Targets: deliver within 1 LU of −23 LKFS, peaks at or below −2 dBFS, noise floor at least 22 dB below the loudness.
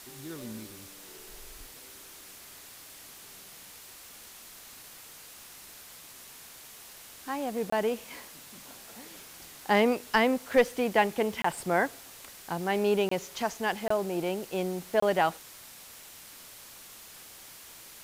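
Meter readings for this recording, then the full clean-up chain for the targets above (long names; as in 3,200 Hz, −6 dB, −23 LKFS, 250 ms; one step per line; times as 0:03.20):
number of dropouts 5; longest dropout 24 ms; background noise floor −49 dBFS; target noise floor −51 dBFS; integrated loudness −29.0 LKFS; sample peak −12.0 dBFS; target loudness −23.0 LKFS
→ repair the gap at 0:07.70/0:11.42/0:13.09/0:13.88/0:15.00, 24 ms
broadband denoise 6 dB, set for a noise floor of −49 dBFS
level +6 dB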